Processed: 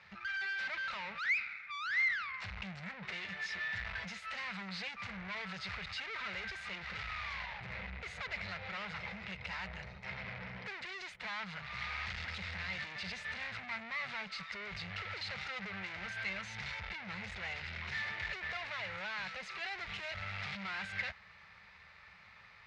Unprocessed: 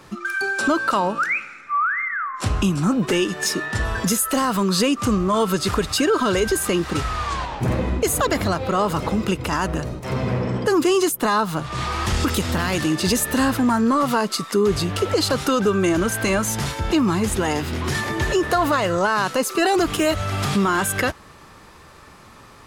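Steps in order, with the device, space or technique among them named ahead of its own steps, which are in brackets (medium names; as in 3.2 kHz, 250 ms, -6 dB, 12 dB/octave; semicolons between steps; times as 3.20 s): scooped metal amplifier (valve stage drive 30 dB, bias 0.7; cabinet simulation 79–3800 Hz, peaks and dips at 130 Hz -4 dB, 190 Hz +8 dB, 290 Hz -6 dB, 1.1 kHz -6 dB, 2.1 kHz +8 dB, 3.2 kHz -6 dB; amplifier tone stack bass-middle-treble 10-0-10)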